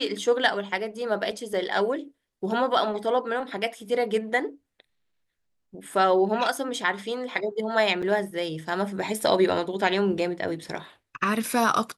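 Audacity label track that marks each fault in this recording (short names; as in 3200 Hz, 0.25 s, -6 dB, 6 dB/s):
1.310000	1.310000	gap 3.4 ms
8.020000	8.030000	gap 6.2 ms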